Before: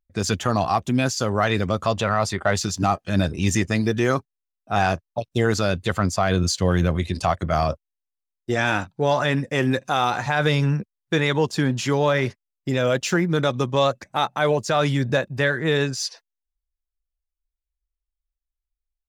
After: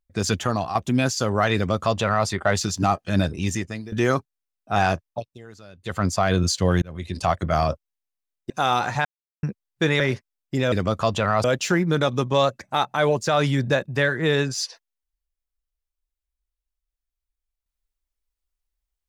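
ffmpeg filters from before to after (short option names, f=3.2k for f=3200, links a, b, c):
-filter_complex "[0:a]asplit=12[a][b][c][d][e][f][g][h][i][j][k][l];[a]atrim=end=0.75,asetpts=PTS-STARTPTS,afade=t=out:st=0.4:d=0.35:silence=0.354813[m];[b]atrim=start=0.75:end=3.92,asetpts=PTS-STARTPTS,afade=t=in:d=0.004:c=hsin:silence=0.354813,afade=t=out:st=2.42:d=0.75:silence=0.105925[n];[c]atrim=start=3.92:end=5.38,asetpts=PTS-STARTPTS,afade=t=in:d=0.004:c=hsin:silence=0.105925,afade=t=out:st=1.16:d=0.3:silence=0.0668344[o];[d]atrim=start=5.38:end=5.77,asetpts=PTS-STARTPTS,volume=-23.5dB[p];[e]atrim=start=5.77:end=6.82,asetpts=PTS-STARTPTS,afade=t=in:d=0.3:silence=0.0668344,afade=t=out:st=1.046:d=0.004:c=hsin[q];[f]atrim=start=6.82:end=8.502,asetpts=PTS-STARTPTS,afade=t=in:d=0.48[r];[g]atrim=start=9.808:end=10.36,asetpts=PTS-STARTPTS,afade=t=out:st=0.548:d=0.004:c=hsin[s];[h]atrim=start=10.36:end=10.74,asetpts=PTS-STARTPTS,volume=0[t];[i]atrim=start=10.74:end=11.312,asetpts=PTS-STARTPTS,afade=t=in:d=0.004:c=hsin[u];[j]atrim=start=12.138:end=12.862[v];[k]atrim=start=1.548:end=2.272[w];[l]atrim=start=12.858[x];[m][n][o][p][q][r]concat=n=6:v=0:a=1[y];[s][t][u]concat=n=3:v=0:a=1[z];[y][z]acrossfade=d=0.004:c1=hsin:c2=hsin[aa];[aa][v]acrossfade=d=0.004:c1=hsin:c2=hsin[ab];[ab][w]acrossfade=d=0.004:c1=hsin:c2=hsin[ac];[ac][x]acrossfade=d=0.004:c1=hsin:c2=hsin"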